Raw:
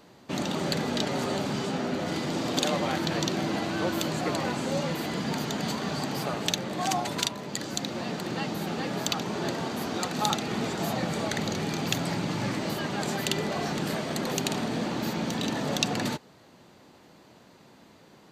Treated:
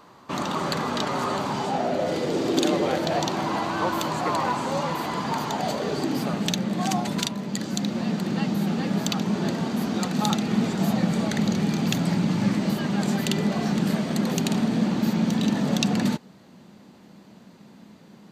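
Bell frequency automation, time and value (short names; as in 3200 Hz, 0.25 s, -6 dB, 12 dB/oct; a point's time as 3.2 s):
bell +13 dB 0.67 oct
1.38 s 1100 Hz
2.67 s 320 Hz
3.37 s 1000 Hz
5.47 s 1000 Hz
6.32 s 200 Hz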